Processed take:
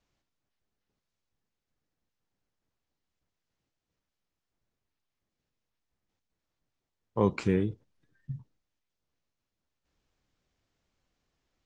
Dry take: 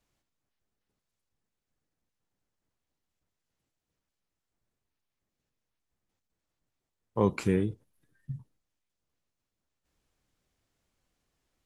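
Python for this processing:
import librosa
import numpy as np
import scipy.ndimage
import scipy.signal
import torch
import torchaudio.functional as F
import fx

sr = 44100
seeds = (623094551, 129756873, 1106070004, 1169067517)

y = scipy.signal.sosfilt(scipy.signal.butter(4, 6700.0, 'lowpass', fs=sr, output='sos'), x)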